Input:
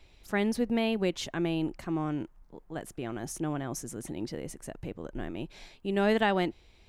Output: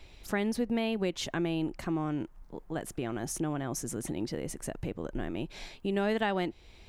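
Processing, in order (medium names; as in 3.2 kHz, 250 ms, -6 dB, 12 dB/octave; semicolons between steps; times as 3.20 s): compression 2:1, threshold -38 dBFS, peak gain reduction 10 dB; trim +5.5 dB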